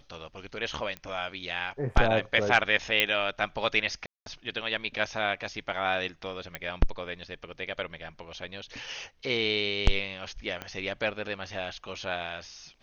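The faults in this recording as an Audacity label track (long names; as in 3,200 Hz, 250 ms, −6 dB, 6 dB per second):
0.970000	0.970000	click −22 dBFS
3.000000	3.000000	click −8 dBFS
4.060000	4.260000	drop-out 202 ms
6.550000	6.550000	click −18 dBFS
10.620000	10.620000	click −20 dBFS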